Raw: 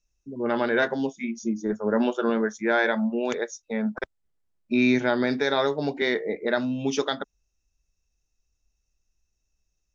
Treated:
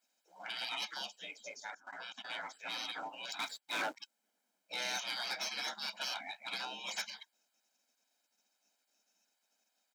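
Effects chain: spectral gate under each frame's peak -30 dB weak; comb 1.3 ms, depth 63%; 1.70–2.30 s: level held to a coarse grid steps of 18 dB; 3.39–3.96 s: waveshaping leveller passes 3; saturation -39 dBFS, distortion -14 dB; brick-wall FIR high-pass 190 Hz; trim +8 dB

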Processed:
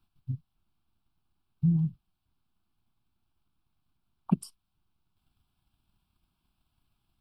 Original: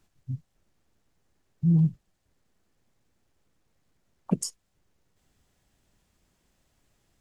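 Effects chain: transient shaper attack +8 dB, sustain +1 dB; static phaser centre 1.9 kHz, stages 6; trim -5.5 dB

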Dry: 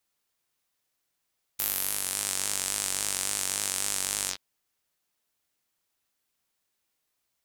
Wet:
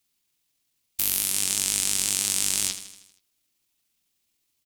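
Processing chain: tempo 1.6×; high-order bell 900 Hz -8.5 dB 2.4 oct; feedback delay 79 ms, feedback 56%, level -11.5 dB; trim +5.5 dB

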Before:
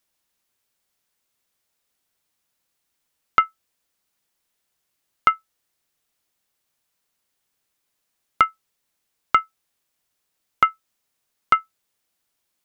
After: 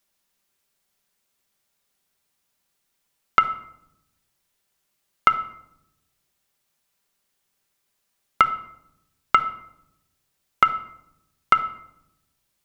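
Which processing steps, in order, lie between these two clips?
simulated room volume 2300 m³, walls furnished, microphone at 1.2 m; trim +1 dB

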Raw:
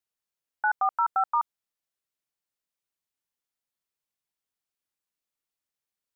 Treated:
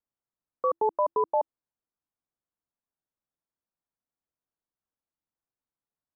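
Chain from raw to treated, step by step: low-pass 1.7 kHz 24 dB/octave; frequency shift -340 Hz

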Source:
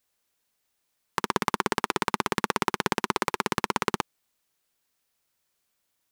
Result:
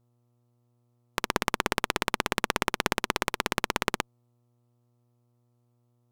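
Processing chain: Chebyshev shaper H 2 -8 dB, 7 -21 dB, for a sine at -2.5 dBFS; mains buzz 120 Hz, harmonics 11, -66 dBFS -8 dB/octave; trim -3.5 dB

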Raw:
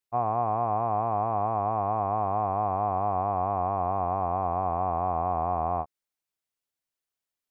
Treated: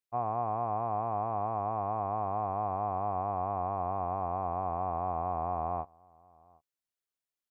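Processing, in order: echo from a far wall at 130 m, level -27 dB; trim -5.5 dB

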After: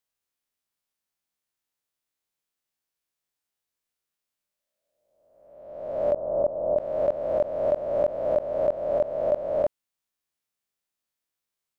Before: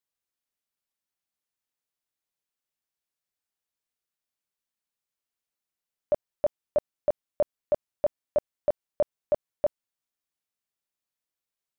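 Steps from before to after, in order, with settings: reverse spectral sustain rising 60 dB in 1.20 s; 6.13–6.77 s: low-pass 1.2 kHz -> 1 kHz 24 dB/octave

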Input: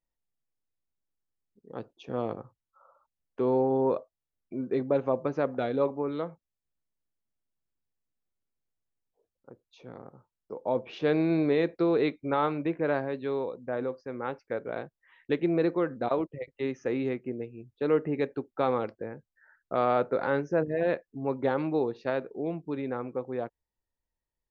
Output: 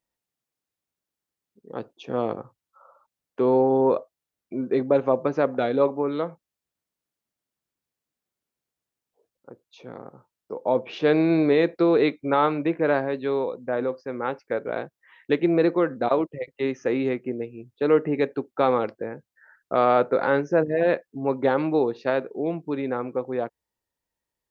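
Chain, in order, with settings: high-pass 160 Hz 6 dB/octave; trim +6.5 dB

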